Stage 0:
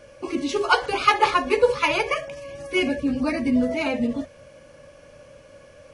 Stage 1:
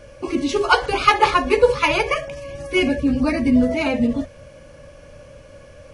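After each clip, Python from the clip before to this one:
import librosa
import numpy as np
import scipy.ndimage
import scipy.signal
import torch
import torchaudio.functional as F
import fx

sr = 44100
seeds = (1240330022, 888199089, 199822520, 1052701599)

y = fx.low_shelf(x, sr, hz=110.0, db=11.5)
y = y * 10.0 ** (3.0 / 20.0)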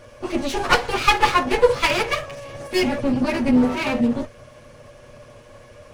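y = fx.lower_of_two(x, sr, delay_ms=8.4)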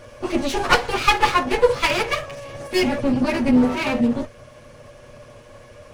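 y = fx.rider(x, sr, range_db=4, speed_s=2.0)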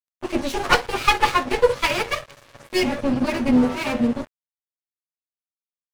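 y = np.sign(x) * np.maximum(np.abs(x) - 10.0 ** (-32.0 / 20.0), 0.0)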